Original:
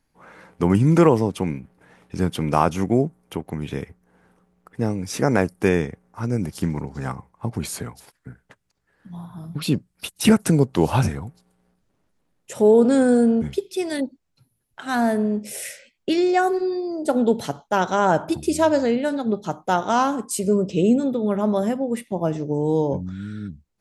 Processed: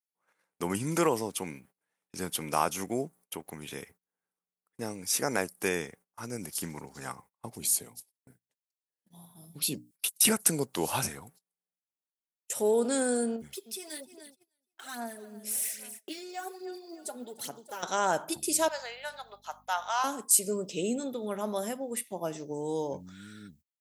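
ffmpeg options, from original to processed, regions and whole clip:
ffmpeg -i in.wav -filter_complex "[0:a]asettb=1/sr,asplit=3[link_01][link_02][link_03];[link_01]atrim=end=7.534[link_04];[link_02]atrim=start=7.53:end=9.91,asetpts=PTS-STARTPTS,afade=type=in:duration=0.004:curve=qsin,afade=type=out:start_time=2.376:duration=0.004:curve=qsin,equalizer=frequency=1400:width=1.2:gain=-14.5,bandreject=frequency=60:width_type=h:width=6,bandreject=frequency=120:width_type=h:width=6,bandreject=frequency=180:width_type=h:width=6,bandreject=frequency=240:width_type=h:width=6,bandreject=frequency=300:width_type=h:width=6[link_05];[link_03]atrim=start=9.906[link_06];[link_04][link_05]acrossfade=duration=0.004:curve1=hsin:curve2=qsin[link_07];[link_07][link_06]acrossfade=duration=0.004:curve1=qsin:curve2=hsin,asettb=1/sr,asplit=3[link_08][link_09][link_10];[link_08]atrim=end=13.364[link_11];[link_09]atrim=start=13.36:end=17.83,asetpts=PTS-STARTPTS,afade=type=in:duration=0.004:curve=qsin,afade=type=out:start_time=4.466:duration=0.004:curve=qsin,aecho=1:1:299|598|897:0.112|0.0482|0.0207,atrim=end_sample=197127,acompressor=threshold=-39dB:ratio=2:attack=3.2:release=140:knee=1:detection=peak,aphaser=in_gain=1:out_gain=1:delay=4.9:decay=0.55:speed=1.2:type=sinusoidal[link_12];[link_10]atrim=start=17.826[link_13];[link_11][link_12]acrossfade=duration=0.004:curve1=hsin:curve2=qsin[link_14];[link_14][link_13]acrossfade=duration=0.004:curve1=qsin:curve2=hsin,asettb=1/sr,asplit=3[link_15][link_16][link_17];[link_15]atrim=end=18.684[link_18];[link_16]atrim=start=18.68:end=20.04,asetpts=PTS-STARTPTS,afade=type=in:duration=0.004:curve=qsin,afade=type=out:start_time=1.356:duration=0.004:curve=qsin,highpass=frequency=730:width=0.5412,highpass=frequency=730:width=1.3066,equalizer=frequency=8700:width_type=o:width=0.88:gain=-15,aeval=exprs='val(0)+0.00631*(sin(2*PI*50*n/s)+sin(2*PI*2*50*n/s)/2+sin(2*PI*3*50*n/s)/3+sin(2*PI*4*50*n/s)/4+sin(2*PI*5*50*n/s)/5)':channel_layout=same[link_19];[link_17]atrim=start=20.036[link_20];[link_18][link_19]acrossfade=duration=0.004:curve1=hsin:curve2=qsin[link_21];[link_21][link_20]acrossfade=duration=0.004:curve1=qsin:curve2=hsin,agate=range=-25dB:threshold=-42dB:ratio=16:detection=peak,aemphasis=mode=production:type=riaa,volume=-8dB" out.wav

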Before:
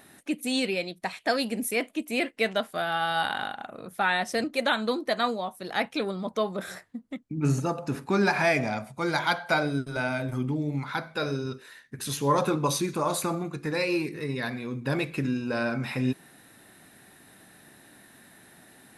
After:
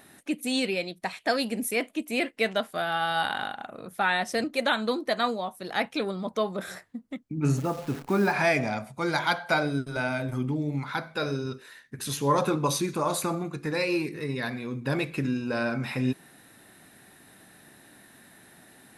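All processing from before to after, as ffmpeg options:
ffmpeg -i in.wav -filter_complex "[0:a]asettb=1/sr,asplit=3[link_01][link_02][link_03];[link_01]atrim=end=7.574[link_04];[link_02]atrim=start=7.57:end=8.32,asetpts=PTS-STARTPTS,afade=type=in:duration=0.004:curve=qsin,afade=type=out:start_time=0.746:duration=0.004:curve=qsin,lowpass=frequency=1800:poles=1,acrusher=bits=8:dc=4:mix=0:aa=0.000001[link_05];[link_03]atrim=start=8.316[link_06];[link_04][link_05]acrossfade=duration=0.004:curve1=hsin:curve2=qsin[link_07];[link_07][link_06]acrossfade=duration=0.004:curve1=qsin:curve2=hsin" out.wav

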